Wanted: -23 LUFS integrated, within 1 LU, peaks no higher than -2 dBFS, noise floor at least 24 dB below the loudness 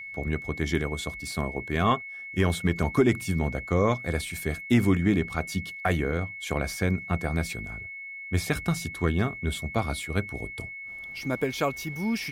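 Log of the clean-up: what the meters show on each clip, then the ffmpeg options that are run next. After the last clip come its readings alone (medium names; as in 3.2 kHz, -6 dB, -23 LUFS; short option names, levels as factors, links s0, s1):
steady tone 2.2 kHz; tone level -37 dBFS; loudness -28.0 LUFS; peak level -10.5 dBFS; loudness target -23.0 LUFS
-> -af "bandreject=f=2200:w=30"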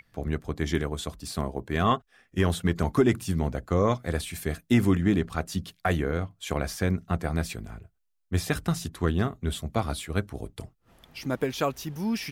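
steady tone not found; loudness -28.5 LUFS; peak level -11.0 dBFS; loudness target -23.0 LUFS
-> -af "volume=1.88"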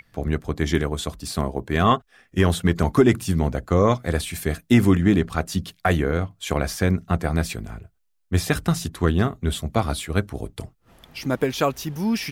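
loudness -23.0 LUFS; peak level -5.5 dBFS; noise floor -66 dBFS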